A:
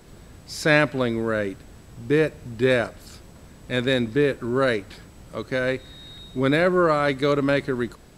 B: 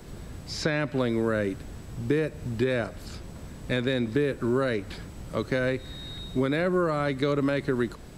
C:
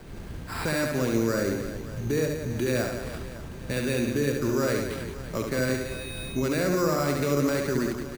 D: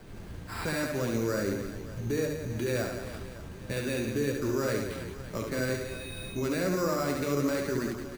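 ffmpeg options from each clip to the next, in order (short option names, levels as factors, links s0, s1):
-filter_complex "[0:a]alimiter=limit=0.211:level=0:latency=1:release=256,lowshelf=f=320:g=4,acrossover=split=290|6200[s0][s1][s2];[s0]acompressor=threshold=0.0282:ratio=4[s3];[s1]acompressor=threshold=0.0447:ratio=4[s4];[s2]acompressor=threshold=0.00126:ratio=4[s5];[s3][s4][s5]amix=inputs=3:normalize=0,volume=1.26"
-af "alimiter=limit=0.119:level=0:latency=1:release=30,acrusher=samples=7:mix=1:aa=0.000001,aecho=1:1:70|175|332.5|568.8|923.1:0.631|0.398|0.251|0.158|0.1"
-af "flanger=delay=9.4:depth=1.8:regen=-44:speed=1.9:shape=triangular"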